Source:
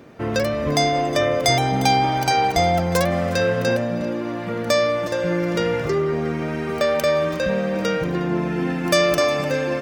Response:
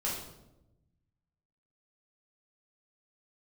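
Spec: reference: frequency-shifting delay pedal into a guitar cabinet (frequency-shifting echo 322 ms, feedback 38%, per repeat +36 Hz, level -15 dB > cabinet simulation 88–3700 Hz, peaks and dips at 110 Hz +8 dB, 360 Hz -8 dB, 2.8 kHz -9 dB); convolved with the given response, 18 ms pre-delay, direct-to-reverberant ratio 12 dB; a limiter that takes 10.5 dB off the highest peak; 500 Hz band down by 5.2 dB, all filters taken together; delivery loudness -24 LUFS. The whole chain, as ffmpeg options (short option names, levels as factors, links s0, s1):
-filter_complex "[0:a]equalizer=f=500:t=o:g=-5,alimiter=limit=0.158:level=0:latency=1,asplit=2[s0][s1];[1:a]atrim=start_sample=2205,adelay=18[s2];[s1][s2]afir=irnorm=-1:irlink=0,volume=0.141[s3];[s0][s3]amix=inputs=2:normalize=0,asplit=4[s4][s5][s6][s7];[s5]adelay=322,afreqshift=36,volume=0.178[s8];[s6]adelay=644,afreqshift=72,volume=0.0676[s9];[s7]adelay=966,afreqshift=108,volume=0.0257[s10];[s4][s8][s9][s10]amix=inputs=4:normalize=0,highpass=88,equalizer=f=110:t=q:w=4:g=8,equalizer=f=360:t=q:w=4:g=-8,equalizer=f=2800:t=q:w=4:g=-9,lowpass=f=3700:w=0.5412,lowpass=f=3700:w=1.3066,volume=1.19"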